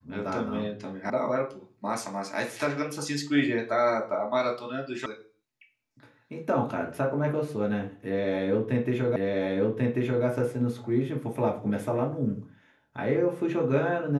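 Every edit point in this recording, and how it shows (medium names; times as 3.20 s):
1.10 s: sound stops dead
5.06 s: sound stops dead
9.16 s: repeat of the last 1.09 s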